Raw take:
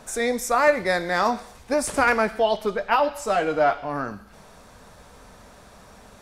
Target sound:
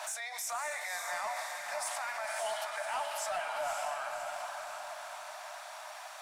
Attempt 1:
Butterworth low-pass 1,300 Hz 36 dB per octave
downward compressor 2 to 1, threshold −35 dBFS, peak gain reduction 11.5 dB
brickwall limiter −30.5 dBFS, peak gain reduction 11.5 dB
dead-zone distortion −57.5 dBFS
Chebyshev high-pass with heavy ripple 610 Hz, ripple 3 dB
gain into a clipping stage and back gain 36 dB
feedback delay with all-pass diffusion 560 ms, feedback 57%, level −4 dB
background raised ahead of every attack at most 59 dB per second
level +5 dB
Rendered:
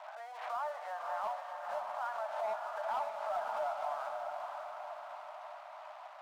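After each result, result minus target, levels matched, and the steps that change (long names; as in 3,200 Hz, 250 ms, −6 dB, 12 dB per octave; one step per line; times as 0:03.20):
dead-zone distortion: distortion +11 dB; downward compressor: peak gain reduction +5 dB; 1,000 Hz band +2.5 dB
change: dead-zone distortion −68 dBFS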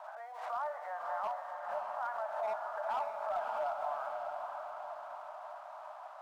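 downward compressor: peak gain reduction +5 dB; 1,000 Hz band +2.5 dB
change: downward compressor 2 to 1, threshold −24 dBFS, peak gain reduction 6 dB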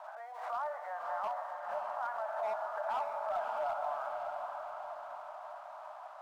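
1,000 Hz band +2.5 dB
remove: Butterworth low-pass 1,300 Hz 36 dB per octave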